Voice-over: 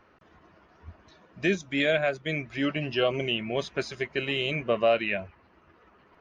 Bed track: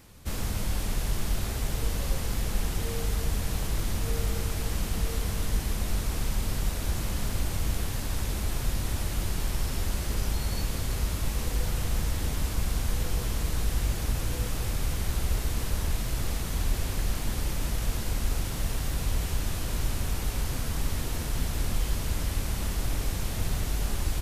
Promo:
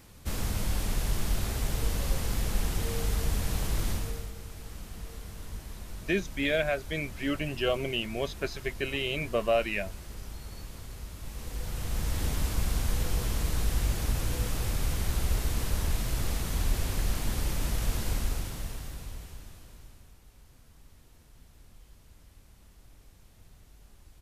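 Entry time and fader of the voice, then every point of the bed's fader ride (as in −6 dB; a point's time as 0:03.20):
4.65 s, −3.0 dB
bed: 0:03.91 −0.5 dB
0:04.33 −13 dB
0:11.14 −13 dB
0:12.21 −0.5 dB
0:18.13 −0.5 dB
0:20.19 −26.5 dB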